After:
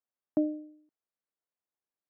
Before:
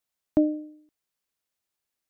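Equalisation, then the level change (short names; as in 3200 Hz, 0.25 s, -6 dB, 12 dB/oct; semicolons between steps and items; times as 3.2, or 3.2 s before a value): HPF 160 Hz; LPF 1400 Hz 12 dB/oct; -6.0 dB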